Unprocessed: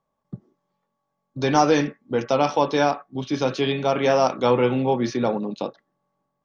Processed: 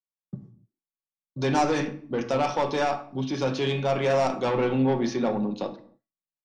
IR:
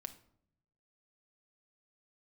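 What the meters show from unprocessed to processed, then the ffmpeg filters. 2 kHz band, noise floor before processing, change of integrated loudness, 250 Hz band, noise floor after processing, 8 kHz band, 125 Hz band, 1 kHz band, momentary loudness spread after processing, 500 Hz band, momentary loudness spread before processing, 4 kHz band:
-3.5 dB, -78 dBFS, -4.0 dB, -3.0 dB, under -85 dBFS, n/a, -1.5 dB, -4.5 dB, 12 LU, -4.5 dB, 10 LU, -4.5 dB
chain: -filter_complex "[0:a]agate=range=-33dB:threshold=-44dB:ratio=3:detection=peak,asoftclip=type=tanh:threshold=-15.5dB[a];[1:a]atrim=start_sample=2205,afade=t=out:st=0.35:d=0.01,atrim=end_sample=15876[b];[a][b]afir=irnorm=-1:irlink=0,aresample=22050,aresample=44100,volume=2dB"

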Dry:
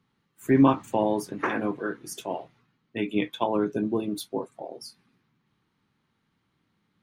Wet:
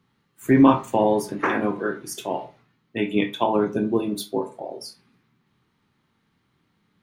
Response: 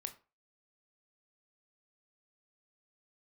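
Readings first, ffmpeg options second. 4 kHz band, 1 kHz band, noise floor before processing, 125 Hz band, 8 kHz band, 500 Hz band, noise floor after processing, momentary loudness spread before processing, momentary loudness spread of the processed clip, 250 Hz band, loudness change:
+4.5 dB, +5.0 dB, -74 dBFS, +3.0 dB, +4.5 dB, +4.5 dB, -70 dBFS, 19 LU, 19 LU, +4.0 dB, +4.5 dB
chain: -filter_complex "[1:a]atrim=start_sample=2205[a];[0:a][a]afir=irnorm=-1:irlink=0,volume=7.5dB"

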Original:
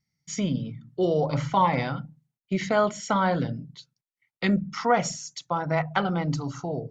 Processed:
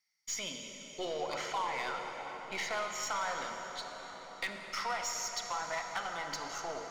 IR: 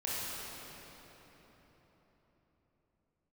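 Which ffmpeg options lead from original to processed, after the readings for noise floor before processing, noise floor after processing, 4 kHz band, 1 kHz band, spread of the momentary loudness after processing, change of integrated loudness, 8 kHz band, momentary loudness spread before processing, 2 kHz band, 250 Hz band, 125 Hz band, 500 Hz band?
under -85 dBFS, -50 dBFS, -1.5 dB, -10.0 dB, 7 LU, -11.0 dB, n/a, 12 LU, -5.5 dB, -23.0 dB, -28.5 dB, -13.5 dB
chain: -filter_complex "[0:a]highpass=990,acompressor=threshold=-36dB:ratio=3,asoftclip=type=tanh:threshold=-30.5dB,aeval=exprs='0.0299*(cos(1*acos(clip(val(0)/0.0299,-1,1)))-cos(1*PI/2))+0.00168*(cos(6*acos(clip(val(0)/0.0299,-1,1)))-cos(6*PI/2))':c=same,asplit=2[a][b];[1:a]atrim=start_sample=2205,asetrate=24255,aresample=44100[c];[b][c]afir=irnorm=-1:irlink=0,volume=-10dB[d];[a][d]amix=inputs=2:normalize=0"

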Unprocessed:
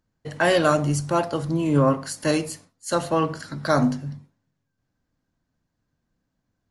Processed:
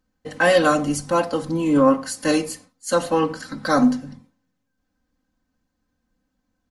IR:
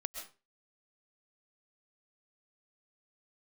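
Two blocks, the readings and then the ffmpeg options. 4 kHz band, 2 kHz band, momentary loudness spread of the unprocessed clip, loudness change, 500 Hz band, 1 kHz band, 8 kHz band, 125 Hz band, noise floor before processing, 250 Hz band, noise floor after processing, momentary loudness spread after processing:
+2.0 dB, +3.5 dB, 15 LU, +2.5 dB, +3.0 dB, +2.5 dB, +2.5 dB, -6.5 dB, -78 dBFS, +4.0 dB, -76 dBFS, 13 LU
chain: -af "aecho=1:1:3.9:0.9"

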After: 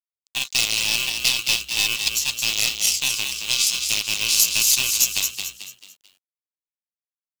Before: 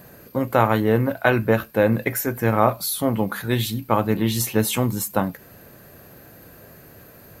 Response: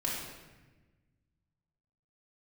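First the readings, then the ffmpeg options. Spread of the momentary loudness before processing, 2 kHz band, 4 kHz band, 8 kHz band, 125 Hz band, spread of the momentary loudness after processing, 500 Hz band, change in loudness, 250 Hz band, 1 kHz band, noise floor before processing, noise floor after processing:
5 LU, +3.0 dB, +14.5 dB, +12.5 dB, -20.5 dB, 9 LU, -23.5 dB, +2.5 dB, -23.0 dB, -16.5 dB, -47 dBFS, under -85 dBFS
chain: -filter_complex "[0:a]crystalizer=i=3:c=0,equalizer=f=1.5k:w=0.68:g=-2.5,aeval=exprs='val(0)*sin(2*PI*1300*n/s)':c=same,aresample=16000,aeval=exprs='sgn(val(0))*max(abs(val(0))-0.0168,0)':c=same,aresample=44100,aeval=exprs='0.708*(cos(1*acos(clip(val(0)/0.708,-1,1)))-cos(1*PI/2))+0.282*(cos(4*acos(clip(val(0)/0.708,-1,1)))-cos(4*PI/2))+0.0562*(cos(5*acos(clip(val(0)/0.708,-1,1)))-cos(5*PI/2))+0.224*(cos(8*acos(clip(val(0)/0.708,-1,1)))-cos(8*PI/2))':c=same,acrusher=bits=5:mode=log:mix=0:aa=0.000001,alimiter=limit=-4.5dB:level=0:latency=1:release=437,asplit=2[a][b];[b]asplit=4[c][d][e][f];[c]adelay=220,afreqshift=61,volume=-7dB[g];[d]adelay=440,afreqshift=122,volume=-15.9dB[h];[e]adelay=660,afreqshift=183,volume=-24.7dB[i];[f]adelay=880,afreqshift=244,volume=-33.6dB[j];[g][h][i][j]amix=inputs=4:normalize=0[k];[a][k]amix=inputs=2:normalize=0,aexciter=amount=12.7:drive=8.5:freq=2.6k,acrusher=bits=6:mix=0:aa=0.000001,volume=-17dB"

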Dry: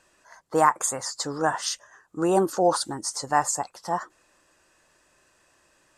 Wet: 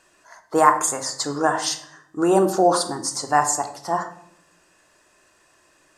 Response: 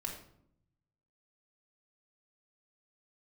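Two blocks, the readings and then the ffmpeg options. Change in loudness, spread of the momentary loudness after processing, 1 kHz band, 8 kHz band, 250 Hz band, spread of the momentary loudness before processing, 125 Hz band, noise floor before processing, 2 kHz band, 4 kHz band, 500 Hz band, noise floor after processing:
+4.5 dB, 10 LU, +4.5 dB, +4.0 dB, +5.0 dB, 9 LU, +3.0 dB, -64 dBFS, +4.0 dB, +4.0 dB, +4.0 dB, -60 dBFS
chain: -filter_complex "[0:a]lowshelf=f=81:g=-9,bandreject=f=257.6:t=h:w=4,bandreject=f=515.2:t=h:w=4,bandreject=f=772.8:t=h:w=4,bandreject=f=1.0304k:t=h:w=4,bandreject=f=1.288k:t=h:w=4,bandreject=f=1.5456k:t=h:w=4,bandreject=f=1.8032k:t=h:w=4,bandreject=f=2.0608k:t=h:w=4,bandreject=f=2.3184k:t=h:w=4,bandreject=f=2.576k:t=h:w=4,bandreject=f=2.8336k:t=h:w=4,bandreject=f=3.0912k:t=h:w=4,bandreject=f=3.3488k:t=h:w=4,bandreject=f=3.6064k:t=h:w=4,bandreject=f=3.864k:t=h:w=4,bandreject=f=4.1216k:t=h:w=4,bandreject=f=4.3792k:t=h:w=4,bandreject=f=4.6368k:t=h:w=4,bandreject=f=4.8944k:t=h:w=4,bandreject=f=5.152k:t=h:w=4,bandreject=f=5.4096k:t=h:w=4,bandreject=f=5.6672k:t=h:w=4,bandreject=f=5.9248k:t=h:w=4,bandreject=f=6.1824k:t=h:w=4,bandreject=f=6.44k:t=h:w=4,bandreject=f=6.6976k:t=h:w=4,bandreject=f=6.9552k:t=h:w=4,bandreject=f=7.2128k:t=h:w=4,bandreject=f=7.4704k:t=h:w=4,bandreject=f=7.728k:t=h:w=4,bandreject=f=7.9856k:t=h:w=4,bandreject=f=8.2432k:t=h:w=4,bandreject=f=8.5008k:t=h:w=4,asplit=2[a][b];[1:a]atrim=start_sample=2205[c];[b][c]afir=irnorm=-1:irlink=0,volume=0.5dB[d];[a][d]amix=inputs=2:normalize=0,volume=-1dB"

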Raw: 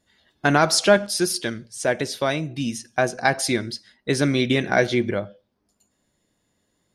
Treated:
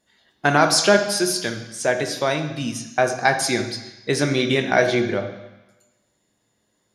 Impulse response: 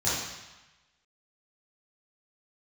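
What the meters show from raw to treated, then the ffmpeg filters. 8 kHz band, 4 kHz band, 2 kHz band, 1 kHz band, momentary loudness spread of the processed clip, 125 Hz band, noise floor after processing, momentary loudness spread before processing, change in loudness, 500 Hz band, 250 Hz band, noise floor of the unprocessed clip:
+2.0 dB, +2.0 dB, +2.0 dB, +2.5 dB, 12 LU, -0.5 dB, -70 dBFS, 11 LU, +1.5 dB, +1.5 dB, -0.5 dB, -72 dBFS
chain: -filter_complex "[0:a]lowshelf=f=140:g=-8.5,asplit=2[a][b];[1:a]atrim=start_sample=2205[c];[b][c]afir=irnorm=-1:irlink=0,volume=-16dB[d];[a][d]amix=inputs=2:normalize=0"

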